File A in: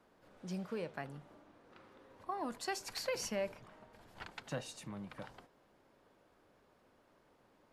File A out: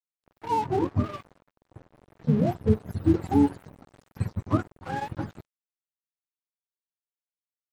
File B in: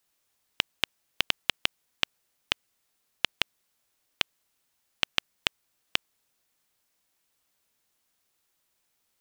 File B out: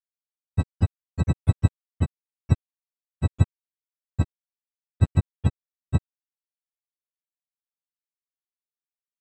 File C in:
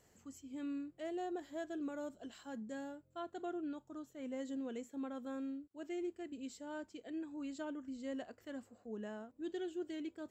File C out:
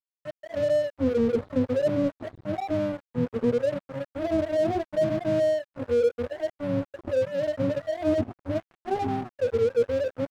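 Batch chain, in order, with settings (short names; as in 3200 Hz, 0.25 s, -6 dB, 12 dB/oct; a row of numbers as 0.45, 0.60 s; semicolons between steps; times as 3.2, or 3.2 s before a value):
spectrum mirrored in octaves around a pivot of 410 Hz; crossover distortion -56.5 dBFS; match loudness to -27 LUFS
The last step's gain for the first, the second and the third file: +18.5, +13.0, +21.0 dB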